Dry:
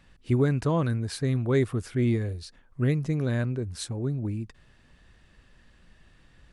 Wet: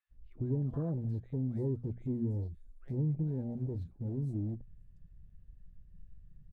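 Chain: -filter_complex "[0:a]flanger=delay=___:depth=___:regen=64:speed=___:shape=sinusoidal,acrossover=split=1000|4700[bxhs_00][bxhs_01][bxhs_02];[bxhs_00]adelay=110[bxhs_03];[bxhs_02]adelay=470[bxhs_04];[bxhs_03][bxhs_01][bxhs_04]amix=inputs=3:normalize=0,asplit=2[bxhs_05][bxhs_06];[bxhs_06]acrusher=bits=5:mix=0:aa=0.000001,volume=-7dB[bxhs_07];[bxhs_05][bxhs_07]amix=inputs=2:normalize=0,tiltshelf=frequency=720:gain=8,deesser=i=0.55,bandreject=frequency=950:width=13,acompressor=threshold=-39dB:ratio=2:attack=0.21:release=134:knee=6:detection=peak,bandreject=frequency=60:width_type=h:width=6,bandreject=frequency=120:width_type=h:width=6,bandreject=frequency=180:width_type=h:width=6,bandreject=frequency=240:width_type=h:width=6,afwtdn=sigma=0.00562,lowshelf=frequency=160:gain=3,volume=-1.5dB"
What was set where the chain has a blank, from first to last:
3.9, 2.7, 1.5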